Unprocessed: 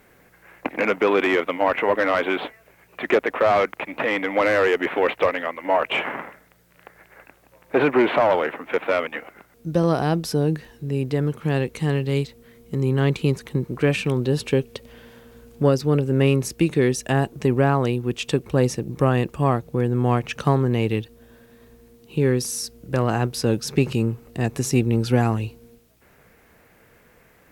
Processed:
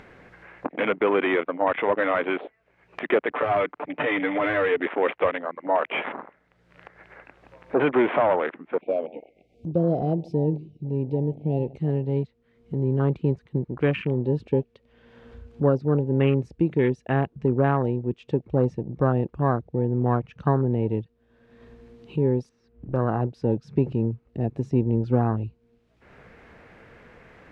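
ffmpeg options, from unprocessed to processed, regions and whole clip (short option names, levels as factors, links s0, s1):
-filter_complex "[0:a]asettb=1/sr,asplit=3[s0][s1][s2];[s0]atrim=end=3.304[s3];[s1]atrim=start=3.3:end=4.8,asetpts=PTS-STARTPTS,afade=t=in:d=0.004:c=qsin,afade=t=out:st=1.496:d=0.004:c=qsin,acrossover=split=170|3000[s4][s5][s6];[s5]acompressor=threshold=0.112:ratio=6:attack=3.2:release=140:knee=2.83:detection=peak[s7];[s4][s7][s6]amix=inputs=3:normalize=0,aecho=1:1:6.8:0.94,atrim=end_sample=66150[s8];[s2]atrim=start=4.796[s9];[s3][s8]acrossfade=d=0.004:c1=hsin:c2=qsin[s10];[s10][s9]acrossfade=d=0.004:c1=qsin:c2=hsin,asettb=1/sr,asplit=3[s11][s12][s13];[s11]atrim=end=8.814[s14];[s12]atrim=start=8.81:end=11.76,asetpts=PTS-STARTPTS,afade=t=in:d=0.004:c=qsin,afade=t=out:st=2.946:d=0.004:c=qsin,asuperstop=centerf=1300:order=20:qfactor=0.91,asplit=2[s15][s16];[s16]adelay=136,lowpass=f=1500:p=1,volume=0.126,asplit=2[s17][s18];[s18]adelay=136,lowpass=f=1500:p=1,volume=0.35,asplit=2[s19][s20];[s20]adelay=136,lowpass=f=1500:p=1,volume=0.35[s21];[s15][s17][s19][s21]amix=inputs=4:normalize=0,atrim=end_sample=130095[s22];[s13]atrim=start=11.756[s23];[s14][s22]acrossfade=d=0.004:c1=hsin:c2=qsin[s24];[s24][s23]acrossfade=d=0.004:c1=qsin:c2=hsin,asettb=1/sr,asplit=3[s25][s26][s27];[s25]atrim=end=22.494[s28];[s26]atrim=start=22.49:end=22.94,asetpts=PTS-STARTPTS,afade=t=in:d=0.004:c=qsin,afade=t=out:st=0.446:d=0.004:c=qsin,lowpass=2000,aeval=exprs='clip(val(0),-1,0.00944)':c=same[s29];[s27]atrim=start=22.936[s30];[s28][s29]acrossfade=d=0.004:c1=hsin:c2=qsin[s31];[s31][s30]acrossfade=d=0.004:c1=qsin:c2=hsin,afwtdn=0.0447,lowpass=3300,acompressor=mode=upward:threshold=0.0447:ratio=2.5,volume=0.75"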